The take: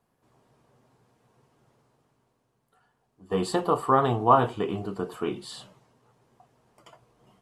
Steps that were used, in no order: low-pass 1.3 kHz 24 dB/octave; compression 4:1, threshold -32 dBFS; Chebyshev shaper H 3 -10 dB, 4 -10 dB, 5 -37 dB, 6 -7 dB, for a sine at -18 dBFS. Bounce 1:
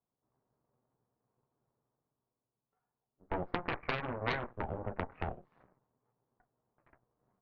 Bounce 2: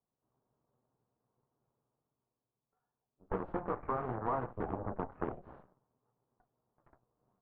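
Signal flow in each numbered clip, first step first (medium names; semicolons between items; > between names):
compression > low-pass > Chebyshev shaper; Chebyshev shaper > compression > low-pass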